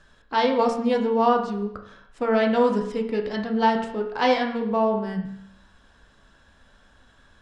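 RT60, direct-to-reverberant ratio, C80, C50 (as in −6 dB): 0.70 s, 1.5 dB, 10.0 dB, 7.5 dB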